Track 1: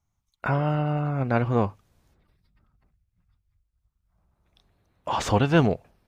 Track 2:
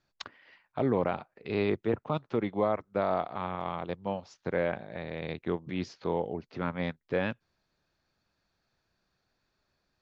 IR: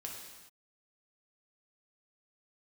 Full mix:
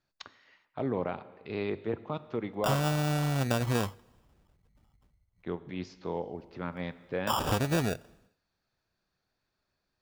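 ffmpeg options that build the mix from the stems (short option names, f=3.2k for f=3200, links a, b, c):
-filter_complex "[0:a]acompressor=threshold=-23dB:ratio=10,acrusher=samples=21:mix=1:aa=0.000001,adelay=2200,volume=-1.5dB,asplit=2[a][b];[b]volume=-21dB[c];[1:a]volume=-6dB,asplit=3[d][e][f];[d]atrim=end=2.87,asetpts=PTS-STARTPTS,afade=t=out:st=2.866:d=0.004:c=hsin[g];[e]atrim=start=2.87:end=5.43,asetpts=PTS-STARTPTS,volume=0[h];[f]atrim=start=5.43,asetpts=PTS-STARTPTS,afade=t=in:d=0.004:c=hsin[i];[g][h][i]concat=n=3:v=0:a=1,asplit=2[j][k];[k]volume=-8.5dB[l];[2:a]atrim=start_sample=2205[m];[c][l]amix=inputs=2:normalize=0[n];[n][m]afir=irnorm=-1:irlink=0[o];[a][j][o]amix=inputs=3:normalize=0"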